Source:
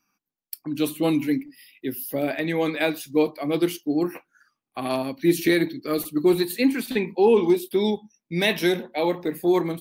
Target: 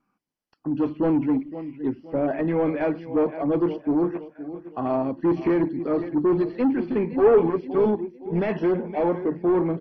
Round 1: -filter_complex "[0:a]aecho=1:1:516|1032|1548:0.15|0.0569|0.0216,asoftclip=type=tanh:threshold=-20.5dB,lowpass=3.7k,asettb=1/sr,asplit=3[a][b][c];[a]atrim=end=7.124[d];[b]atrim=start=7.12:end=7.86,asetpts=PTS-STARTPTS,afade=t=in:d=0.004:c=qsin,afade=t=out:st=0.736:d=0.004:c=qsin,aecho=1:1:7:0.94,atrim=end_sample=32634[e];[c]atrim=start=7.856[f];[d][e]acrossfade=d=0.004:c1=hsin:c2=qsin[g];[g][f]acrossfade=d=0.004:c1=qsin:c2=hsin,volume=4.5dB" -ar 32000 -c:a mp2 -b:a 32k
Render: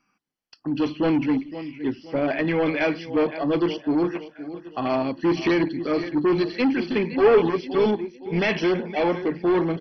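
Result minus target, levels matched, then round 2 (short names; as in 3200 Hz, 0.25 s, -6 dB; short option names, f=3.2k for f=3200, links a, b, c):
4000 Hz band +17.0 dB
-filter_complex "[0:a]aecho=1:1:516|1032|1548:0.15|0.0569|0.0216,asoftclip=type=tanh:threshold=-20.5dB,lowpass=1.1k,asettb=1/sr,asplit=3[a][b][c];[a]atrim=end=7.124[d];[b]atrim=start=7.12:end=7.86,asetpts=PTS-STARTPTS,afade=t=in:d=0.004:c=qsin,afade=t=out:st=0.736:d=0.004:c=qsin,aecho=1:1:7:0.94,atrim=end_sample=32634[e];[c]atrim=start=7.856[f];[d][e]acrossfade=d=0.004:c1=hsin:c2=qsin[g];[g][f]acrossfade=d=0.004:c1=qsin:c2=hsin,volume=4.5dB" -ar 32000 -c:a mp2 -b:a 32k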